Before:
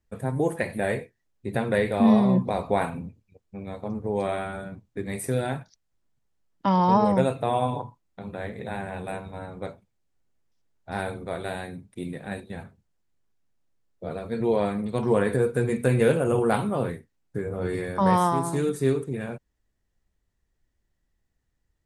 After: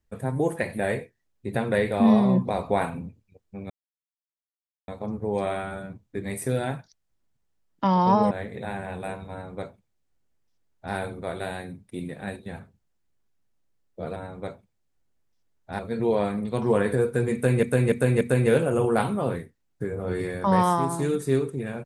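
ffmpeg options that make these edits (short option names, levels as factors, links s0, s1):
-filter_complex "[0:a]asplit=8[s0][s1][s2][s3][s4][s5][s6][s7];[s0]atrim=end=3.7,asetpts=PTS-STARTPTS,afade=t=out:st=3.696:d=0.004:c=hsin,apad=pad_dur=1.18[s8];[s1]atrim=start=3.7:end=7.132,asetpts=PTS-STARTPTS,afade=t=in:d=0.004:c=hsin[s9];[s2]atrim=start=8.348:end=14.202[s10];[s3]atrim=start=9.348:end=10.982[s11];[s4]atrim=start=14.198:end=16.042[s12];[s5]atrim=start=15.748:end=16.042[s13];[s6]atrim=start=15.748:end=16.042[s14];[s7]atrim=start=15.748[s15];[s8][s9]concat=n=2:v=0:a=1[s16];[s16][s10]acrossfade=d=0.004:c1=hsin:c2=hsin[s17];[s17][s11]acrossfade=d=0.004:c1=hsin:c2=hsin[s18];[s18][s12]acrossfade=d=0.004:c1=hsin:c2=hsin[s19];[s19][s13]acrossfade=d=0.004:c1=hsin:c2=hsin[s20];[s20][s14]acrossfade=d=0.004:c1=hsin:c2=hsin[s21];[s21][s15]acrossfade=d=0.004:c1=hsin:c2=hsin"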